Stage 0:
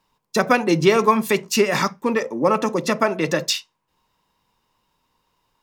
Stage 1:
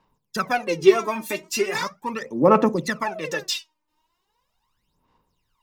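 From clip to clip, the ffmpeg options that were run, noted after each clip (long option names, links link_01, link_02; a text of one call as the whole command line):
ffmpeg -i in.wav -af "aphaser=in_gain=1:out_gain=1:delay=3.3:decay=0.79:speed=0.39:type=sinusoidal,volume=-8.5dB" out.wav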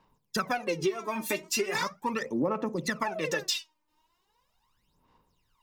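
ffmpeg -i in.wav -af "acompressor=threshold=-25dB:ratio=16" out.wav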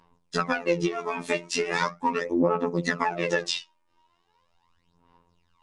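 ffmpeg -i in.wav -af "afftfilt=real='hypot(re,im)*cos(PI*b)':imag='0':win_size=2048:overlap=0.75,highshelf=frequency=5800:gain=-11,volume=8.5dB" -ar 22050 -c:a nellymoser out.flv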